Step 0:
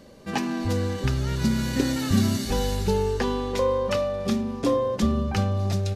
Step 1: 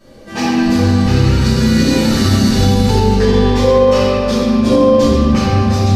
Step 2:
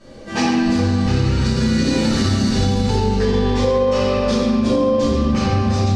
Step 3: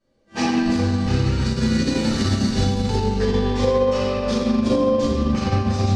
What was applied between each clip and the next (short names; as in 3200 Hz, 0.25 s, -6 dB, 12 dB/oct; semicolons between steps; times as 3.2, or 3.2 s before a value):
reverb RT60 2.9 s, pre-delay 3 ms, DRR -16.5 dB; dynamic EQ 4700 Hz, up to +5 dB, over -31 dBFS, Q 0.99; maximiser -4.5 dB; gain -1 dB
LPF 9000 Hz 24 dB/oct; compressor 5:1, threshold -15 dBFS, peak gain reduction 8 dB; gain +1 dB
upward expander 2.5:1, over -32 dBFS